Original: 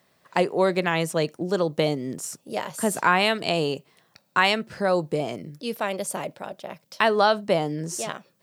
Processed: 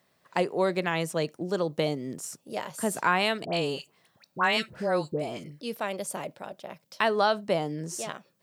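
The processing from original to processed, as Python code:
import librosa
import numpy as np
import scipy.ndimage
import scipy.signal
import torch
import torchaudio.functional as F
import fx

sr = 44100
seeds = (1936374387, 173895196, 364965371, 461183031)

y = fx.dispersion(x, sr, late='highs', ms=83.0, hz=1200.0, at=(3.45, 5.61))
y = F.gain(torch.from_numpy(y), -4.5).numpy()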